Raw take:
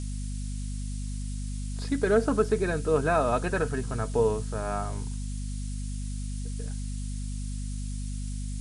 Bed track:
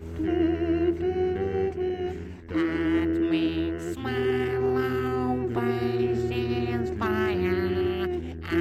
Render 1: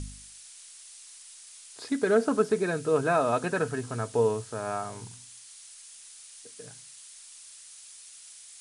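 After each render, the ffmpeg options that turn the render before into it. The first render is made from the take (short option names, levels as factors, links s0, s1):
-af "bandreject=f=50:t=h:w=4,bandreject=f=100:t=h:w=4,bandreject=f=150:t=h:w=4,bandreject=f=200:t=h:w=4,bandreject=f=250:t=h:w=4"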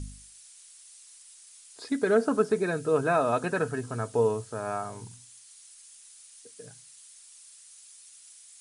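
-af "afftdn=nr=6:nf=-49"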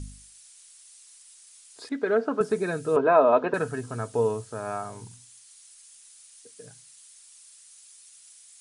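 -filter_complex "[0:a]asettb=1/sr,asplit=3[s0][s1][s2];[s0]atrim=end=1.894[s3];[s1]atrim=start=1.89:end=2.41,asetpts=PTS-STARTPTS,afade=t=in:d=0.004:c=qsin,afade=t=out:st=0.516:d=0.004:c=qsin,highpass=260,lowpass=3100[s4];[s2]atrim=start=2.406[s5];[s3][s4]acrossfade=d=0.004:c1=hsin:c2=qsin[s6];[s6][s5]acrossfade=d=0.004:c1=qsin:c2=hsin,asettb=1/sr,asplit=3[s7][s8][s9];[s7]atrim=end=2.964[s10];[s8]atrim=start=2.96:end=3.54,asetpts=PTS-STARTPTS,afade=t=in:d=0.004:c=qsin,afade=t=out:st=0.576:d=0.004:c=qsin,highpass=240,equalizer=f=260:t=q:w=4:g=6,equalizer=f=420:t=q:w=4:g=8,equalizer=f=610:t=q:w=4:g=8,equalizer=f=990:t=q:w=4:g=9,lowpass=f=3500:w=0.5412,lowpass=f=3500:w=1.3066[s11];[s9]atrim=start=3.536[s12];[s10][s11]acrossfade=d=0.004:c1=hsin:c2=qsin[s13];[s13][s12]acrossfade=d=0.004:c1=qsin:c2=hsin"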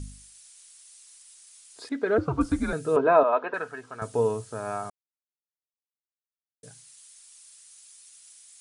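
-filter_complex "[0:a]asettb=1/sr,asplit=3[s0][s1][s2];[s0]atrim=end=2.184[s3];[s1]atrim=start=2.18:end=2.73,asetpts=PTS-STARTPTS,afade=t=in:d=0.004:c=qsin,afade=t=out:st=0.546:d=0.004:c=qsin,afreqshift=-140[s4];[s2]atrim=start=2.726[s5];[s3][s4]acrossfade=d=0.004:c1=hsin:c2=qsin[s6];[s6][s5]acrossfade=d=0.004:c1=qsin:c2=hsin,asettb=1/sr,asplit=3[s7][s8][s9];[s7]atrim=end=3.234[s10];[s8]atrim=start=3.23:end=4.02,asetpts=PTS-STARTPTS,afade=t=in:d=0.004:c=qsin,afade=t=out:st=0.786:d=0.004:c=qsin,bandpass=f=1500:t=q:w=0.68[s11];[s9]atrim=start=4.016[s12];[s10][s11]acrossfade=d=0.004:c1=hsin:c2=qsin[s13];[s13][s12]acrossfade=d=0.004:c1=qsin:c2=hsin,asplit=3[s14][s15][s16];[s14]atrim=end=4.9,asetpts=PTS-STARTPTS,afade=t=out:st=4.896:d=0.004:c=hsin[s17];[s15]atrim=start=4.9:end=6.63,asetpts=PTS-STARTPTS,volume=0[s18];[s16]atrim=start=6.63,asetpts=PTS-STARTPTS,afade=t=in:d=0.004:c=hsin[s19];[s17][s18][s19]concat=n=3:v=0:a=1"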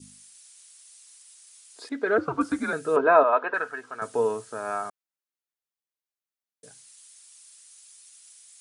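-af "highpass=230,adynamicequalizer=threshold=0.00794:dfrequency=1500:dqfactor=1.5:tfrequency=1500:tqfactor=1.5:attack=5:release=100:ratio=0.375:range=3:mode=boostabove:tftype=bell"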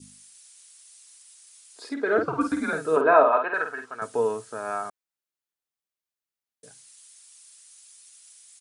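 -filter_complex "[0:a]asplit=3[s0][s1][s2];[s0]afade=t=out:st=1.84:d=0.02[s3];[s1]asplit=2[s4][s5];[s5]adelay=50,volume=0.501[s6];[s4][s6]amix=inputs=2:normalize=0,afade=t=in:st=1.84:d=0.02,afade=t=out:st=3.84:d=0.02[s7];[s2]afade=t=in:st=3.84:d=0.02[s8];[s3][s7][s8]amix=inputs=3:normalize=0"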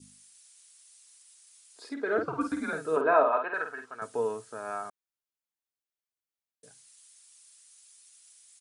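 -af "volume=0.531"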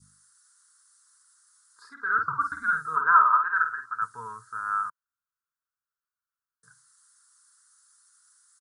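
-af "firequalizer=gain_entry='entry(140,0);entry(290,-22);entry(430,-20);entry(680,-29);entry(980,4);entry(1400,14);entry(2400,-22);entry(4400,-6);entry(12000,-4)':delay=0.05:min_phase=1"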